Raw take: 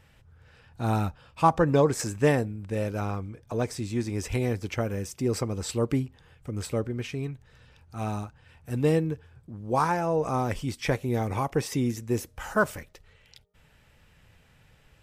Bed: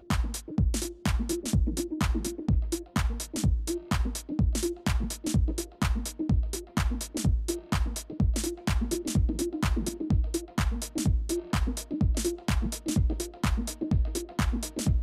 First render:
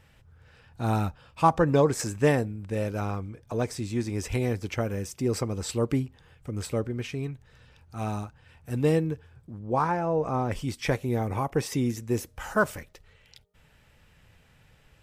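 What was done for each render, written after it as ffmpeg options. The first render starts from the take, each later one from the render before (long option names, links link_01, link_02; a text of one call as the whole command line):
ffmpeg -i in.wav -filter_complex "[0:a]asplit=3[link_01][link_02][link_03];[link_01]afade=type=out:start_time=9.58:duration=0.02[link_04];[link_02]lowpass=frequency=1900:poles=1,afade=type=in:start_time=9.58:duration=0.02,afade=type=out:start_time=10.51:duration=0.02[link_05];[link_03]afade=type=in:start_time=10.51:duration=0.02[link_06];[link_04][link_05][link_06]amix=inputs=3:normalize=0,asettb=1/sr,asplit=3[link_07][link_08][link_09];[link_07]atrim=end=11.144[link_10];[link_08]atrim=start=11.14:end=11.56,asetpts=PTS-STARTPTS,afade=type=in:duration=0.004:curve=qsin,afade=type=out:start_time=0.416:duration=0.004:curve=qsin,equalizer=frequency=5000:width=0.55:gain=-6.5[link_11];[link_09]atrim=start=11.556[link_12];[link_10][link_11]acrossfade=duration=0.004:curve1=hsin:curve2=qsin[link_13];[link_13][link_12]acrossfade=duration=0.004:curve1=qsin:curve2=hsin" out.wav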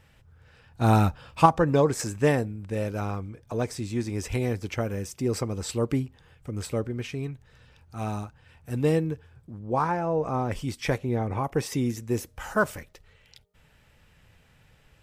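ffmpeg -i in.wav -filter_complex "[0:a]asettb=1/sr,asplit=3[link_01][link_02][link_03];[link_01]atrim=end=0.814[link_04];[link_02]atrim=start=0.81:end=1.46,asetpts=PTS-STARTPTS,afade=type=in:duration=0.004:curve=qsin,afade=type=out:start_time=0.646:duration=0.004:curve=qsin,acontrast=61[link_05];[link_03]atrim=start=1.456[link_06];[link_04][link_05]acrossfade=duration=0.004:curve1=hsin:curve2=qsin[link_07];[link_07][link_06]acrossfade=duration=0.004:curve1=qsin:curve2=hsin,asettb=1/sr,asplit=3[link_08][link_09][link_10];[link_08]atrim=end=10.984[link_11];[link_09]atrim=start=10.98:end=11.44,asetpts=PTS-STARTPTS,afade=type=in:duration=0.004:curve=qsin,afade=type=out:start_time=0.456:duration=0.004:curve=qsin,aemphasis=mode=reproduction:type=50fm[link_12];[link_10]atrim=start=11.436[link_13];[link_11][link_12]acrossfade=duration=0.004:curve1=hsin:curve2=qsin[link_14];[link_14][link_13]acrossfade=duration=0.004:curve1=qsin:curve2=hsin" out.wav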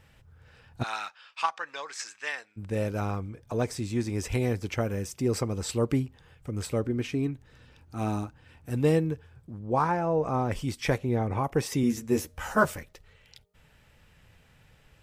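ffmpeg -i in.wav -filter_complex "[0:a]asplit=3[link_01][link_02][link_03];[link_01]afade=type=out:start_time=0.82:duration=0.02[link_04];[link_02]asuperpass=centerf=3000:order=4:qfactor=0.64,afade=type=in:start_time=0.82:duration=0.02,afade=type=out:start_time=2.56:duration=0.02[link_05];[link_03]afade=type=in:start_time=2.56:duration=0.02[link_06];[link_04][link_05][link_06]amix=inputs=3:normalize=0,asettb=1/sr,asplit=3[link_07][link_08][link_09];[link_07]atrim=end=6.854[link_10];[link_08]atrim=start=6.85:end=8.7,asetpts=PTS-STARTPTS,afade=type=in:duration=0.004:curve=qsin,afade=type=out:start_time=1.846:duration=0.004:curve=qsin,equalizer=frequency=290:width=2.6:gain=9.5[link_11];[link_09]atrim=start=8.696[link_12];[link_10][link_11]acrossfade=duration=0.004:curve1=hsin:curve2=qsin[link_13];[link_13][link_12]acrossfade=duration=0.004:curve1=qsin:curve2=hsin,asettb=1/sr,asplit=3[link_14][link_15][link_16];[link_14]atrim=end=11.824[link_17];[link_15]atrim=start=11.82:end=12.74,asetpts=PTS-STARTPTS,afade=type=in:duration=0.004:curve=qsin,afade=type=out:start_time=0.916:duration=0.004:curve=qsin,asplit=2[link_18][link_19];[link_19]adelay=13,volume=-3dB[link_20];[link_18][link_20]amix=inputs=2:normalize=0,atrim=end_sample=40572[link_21];[link_16]atrim=start=12.736[link_22];[link_17][link_21]acrossfade=duration=0.004:curve1=hsin:curve2=qsin[link_23];[link_23][link_22]acrossfade=duration=0.004:curve1=qsin:curve2=hsin" out.wav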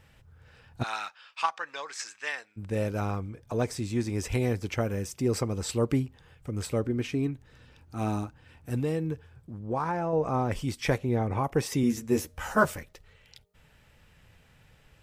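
ffmpeg -i in.wav -filter_complex "[0:a]asettb=1/sr,asplit=3[link_01][link_02][link_03];[link_01]atrim=end=8.794[link_04];[link_02]atrim=start=8.79:end=10.13,asetpts=PTS-STARTPTS,afade=type=in:duration=0.004:curve=qsin,afade=type=out:start_time=1.336:duration=0.004:curve=qsin,acompressor=threshold=-26dB:ratio=3:attack=3.2:release=140:knee=1:detection=peak[link_05];[link_03]atrim=start=10.126[link_06];[link_04][link_05]acrossfade=duration=0.004:curve1=hsin:curve2=qsin[link_07];[link_07][link_06]acrossfade=duration=0.004:curve1=qsin:curve2=hsin" out.wav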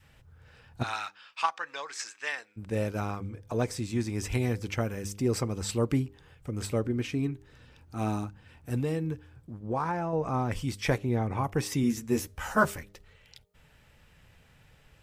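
ffmpeg -i in.wav -af "bandreject=frequency=100.3:width_type=h:width=4,bandreject=frequency=200.6:width_type=h:width=4,bandreject=frequency=300.9:width_type=h:width=4,bandreject=frequency=401.2:width_type=h:width=4,bandreject=frequency=501.5:width_type=h:width=4,adynamicequalizer=threshold=0.00708:dfrequency=510:dqfactor=1.2:tfrequency=510:tqfactor=1.2:attack=5:release=100:ratio=0.375:range=3:mode=cutabove:tftype=bell" out.wav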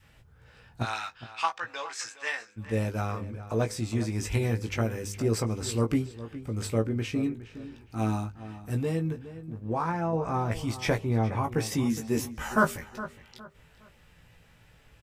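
ffmpeg -i in.wav -filter_complex "[0:a]asplit=2[link_01][link_02];[link_02]adelay=18,volume=-5.5dB[link_03];[link_01][link_03]amix=inputs=2:normalize=0,asplit=2[link_04][link_05];[link_05]adelay=413,lowpass=frequency=3000:poles=1,volume=-14dB,asplit=2[link_06][link_07];[link_07]adelay=413,lowpass=frequency=3000:poles=1,volume=0.31,asplit=2[link_08][link_09];[link_09]adelay=413,lowpass=frequency=3000:poles=1,volume=0.31[link_10];[link_04][link_06][link_08][link_10]amix=inputs=4:normalize=0" out.wav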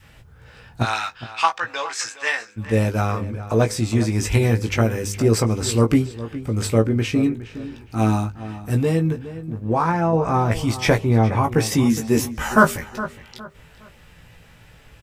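ffmpeg -i in.wav -af "volume=9.5dB,alimiter=limit=-2dB:level=0:latency=1" out.wav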